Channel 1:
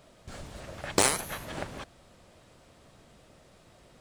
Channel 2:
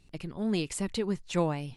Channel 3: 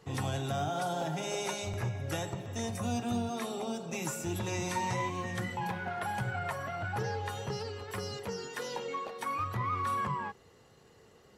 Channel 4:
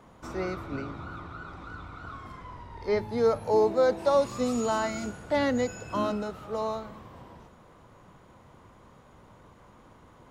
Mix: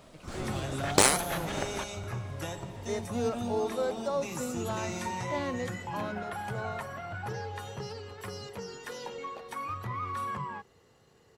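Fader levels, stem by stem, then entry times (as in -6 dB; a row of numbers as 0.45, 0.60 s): +2.0, -13.0, -2.5, -8.5 dB; 0.00, 0.00, 0.30, 0.00 s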